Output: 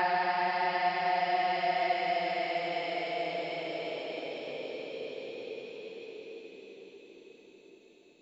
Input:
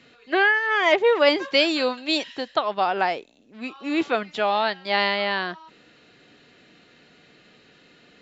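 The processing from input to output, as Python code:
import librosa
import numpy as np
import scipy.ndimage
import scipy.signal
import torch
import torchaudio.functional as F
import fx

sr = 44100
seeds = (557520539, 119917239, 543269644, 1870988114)

y = fx.paulstretch(x, sr, seeds[0], factor=43.0, window_s=0.1, from_s=3.06)
y = fx.hum_notches(y, sr, base_hz=50, count=3)
y = F.gain(torch.from_numpy(y), -7.0).numpy()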